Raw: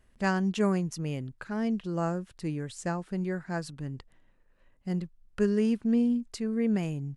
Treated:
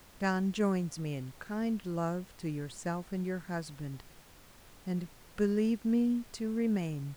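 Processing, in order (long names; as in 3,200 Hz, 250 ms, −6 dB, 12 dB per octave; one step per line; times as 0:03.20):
background noise pink −53 dBFS
level −3.5 dB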